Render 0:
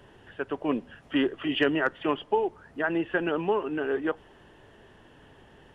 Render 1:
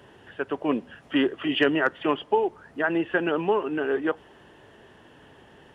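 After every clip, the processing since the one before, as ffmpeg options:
-af "highpass=f=110:p=1,volume=1.41"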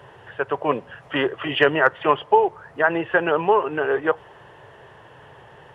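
-af "equalizer=f=125:t=o:w=1:g=11,equalizer=f=250:t=o:w=1:g=-10,equalizer=f=500:t=o:w=1:g=7,equalizer=f=1000:t=o:w=1:g=8,equalizer=f=2000:t=o:w=1:g=4"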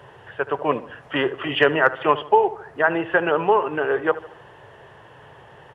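-filter_complex "[0:a]asplit=2[s0][s1];[s1]adelay=75,lowpass=f=2000:p=1,volume=0.178,asplit=2[s2][s3];[s3]adelay=75,lowpass=f=2000:p=1,volume=0.48,asplit=2[s4][s5];[s5]adelay=75,lowpass=f=2000:p=1,volume=0.48,asplit=2[s6][s7];[s7]adelay=75,lowpass=f=2000:p=1,volume=0.48[s8];[s0][s2][s4][s6][s8]amix=inputs=5:normalize=0"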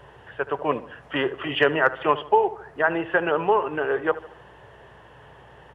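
-af "aeval=exprs='val(0)+0.00178*(sin(2*PI*60*n/s)+sin(2*PI*2*60*n/s)/2+sin(2*PI*3*60*n/s)/3+sin(2*PI*4*60*n/s)/4+sin(2*PI*5*60*n/s)/5)':c=same,volume=0.75"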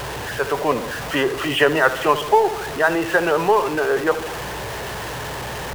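-af "aeval=exprs='val(0)+0.5*0.0473*sgn(val(0))':c=same,volume=1.33"

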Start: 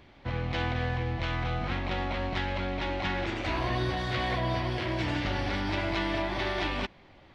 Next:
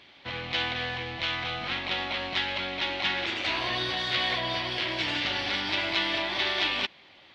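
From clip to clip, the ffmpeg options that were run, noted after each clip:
-af "highpass=f=290:p=1,equalizer=f=3500:w=0.77:g=13,volume=0.794"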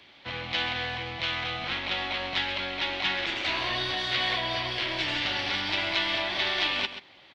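-filter_complex "[0:a]aecho=1:1:132:0.266,acrossover=split=200|470|2200[s0][s1][s2][s3];[s1]aeval=exprs='clip(val(0),-1,0.00398)':c=same[s4];[s0][s4][s2][s3]amix=inputs=4:normalize=0"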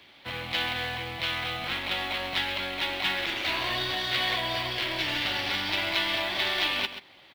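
-af "acrusher=bits=5:mode=log:mix=0:aa=0.000001"

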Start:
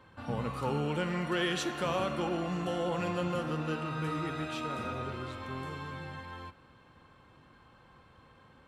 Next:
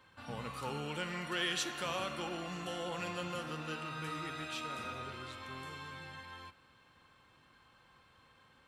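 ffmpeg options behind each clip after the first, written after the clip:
-af "tiltshelf=f=1300:g=-6,volume=0.631"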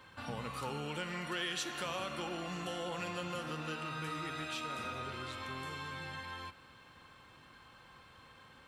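-af "acompressor=threshold=0.00398:ratio=2,volume=2.11"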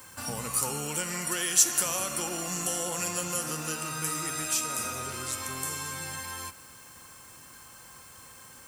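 -af "aexciter=amount=5.7:drive=9.6:freq=5500,volume=1.68"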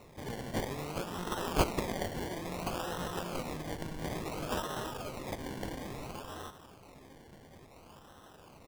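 -filter_complex "[0:a]asplit=2[s0][s1];[s1]adelay=1458,volume=0.224,highshelf=f=4000:g=-32.8[s2];[s0][s2]amix=inputs=2:normalize=0,acrusher=samples=27:mix=1:aa=0.000001:lfo=1:lforange=16.2:lforate=0.58,volume=0.531"

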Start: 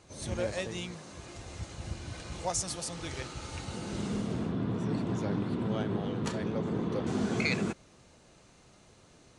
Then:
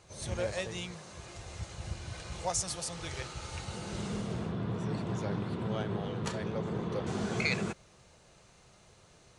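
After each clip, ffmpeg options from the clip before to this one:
-af "equalizer=f=270:w=2.5:g=-10"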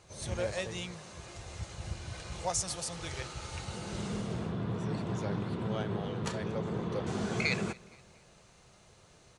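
-af "aecho=1:1:234|468|702:0.0668|0.0301|0.0135"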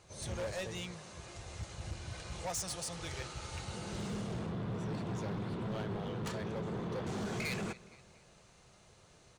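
-af "asoftclip=type=hard:threshold=0.0251,volume=0.794"

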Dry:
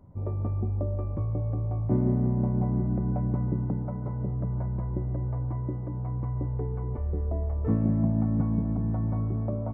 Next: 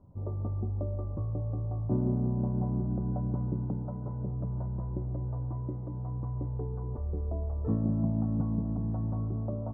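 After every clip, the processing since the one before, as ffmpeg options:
-af "lowpass=f=1300:w=0.5412,lowpass=f=1300:w=1.3066,volume=0.631"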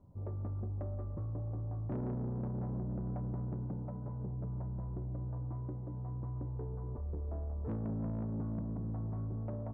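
-af "asoftclip=type=tanh:threshold=0.0335,volume=0.668"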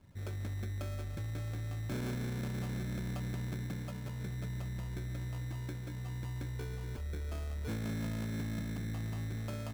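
-af "acrusher=samples=23:mix=1:aa=0.000001"

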